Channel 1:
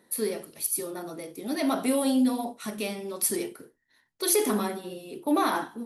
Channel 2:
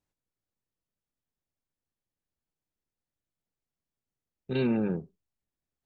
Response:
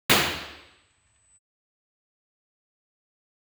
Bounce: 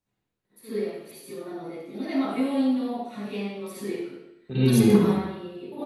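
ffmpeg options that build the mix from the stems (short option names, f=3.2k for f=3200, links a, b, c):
-filter_complex "[0:a]equalizer=f=11k:t=o:w=1.2:g=-5.5,adelay=450,volume=-5dB,asplit=2[a][b];[b]volume=-22dB[c];[1:a]acrossover=split=290|3000[d][e][f];[e]acompressor=threshold=-40dB:ratio=6[g];[d][g][f]amix=inputs=3:normalize=0,volume=-1dB,asplit=3[h][i][j];[i]volume=-16dB[k];[j]apad=whole_len=278211[l];[a][l]sidechaingate=range=-14dB:threshold=-59dB:ratio=16:detection=peak[m];[2:a]atrim=start_sample=2205[n];[c][k]amix=inputs=2:normalize=0[o];[o][n]afir=irnorm=-1:irlink=0[p];[m][h][p]amix=inputs=3:normalize=0"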